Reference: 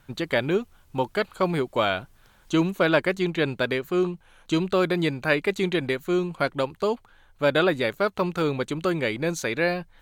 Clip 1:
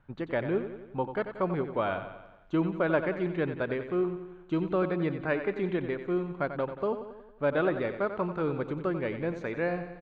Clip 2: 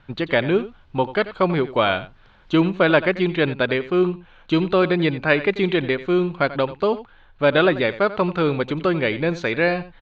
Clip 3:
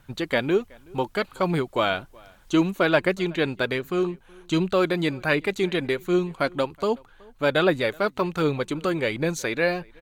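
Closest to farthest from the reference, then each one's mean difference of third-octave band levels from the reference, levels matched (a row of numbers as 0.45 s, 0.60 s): 3, 2, 1; 1.0 dB, 4.0 dB, 7.5 dB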